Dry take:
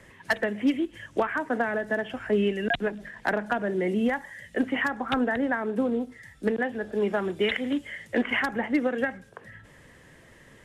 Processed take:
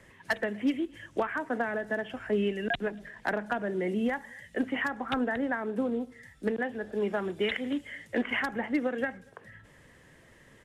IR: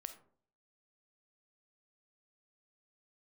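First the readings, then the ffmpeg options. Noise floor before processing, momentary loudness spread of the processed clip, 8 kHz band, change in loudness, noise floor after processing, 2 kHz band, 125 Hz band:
-54 dBFS, 6 LU, no reading, -4.0 dB, -58 dBFS, -4.0 dB, -4.0 dB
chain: -filter_complex "[0:a]asplit=2[s0][s1];[s1]adelay=239.1,volume=0.0316,highshelf=f=4000:g=-5.38[s2];[s0][s2]amix=inputs=2:normalize=0,volume=0.631"

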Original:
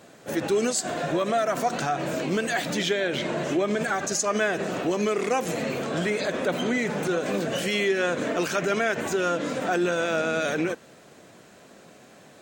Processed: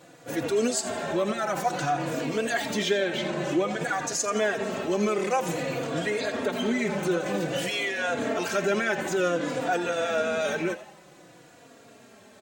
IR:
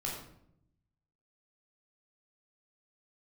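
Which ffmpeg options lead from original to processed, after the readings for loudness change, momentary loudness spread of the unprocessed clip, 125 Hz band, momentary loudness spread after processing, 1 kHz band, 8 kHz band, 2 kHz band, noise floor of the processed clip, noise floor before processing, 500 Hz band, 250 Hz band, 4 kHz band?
-1.5 dB, 4 LU, -1.5 dB, 4 LU, -1.0 dB, -1.5 dB, -1.5 dB, -53 dBFS, -51 dBFS, -1.5 dB, -1.5 dB, -1.0 dB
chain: -filter_complex "[0:a]acontrast=64,asplit=5[s0][s1][s2][s3][s4];[s1]adelay=85,afreqshift=150,volume=0.224[s5];[s2]adelay=170,afreqshift=300,volume=0.0832[s6];[s3]adelay=255,afreqshift=450,volume=0.0305[s7];[s4]adelay=340,afreqshift=600,volume=0.0114[s8];[s0][s5][s6][s7][s8]amix=inputs=5:normalize=0,asplit=2[s9][s10];[s10]adelay=3.6,afreqshift=-0.53[s11];[s9][s11]amix=inputs=2:normalize=1,volume=0.562"

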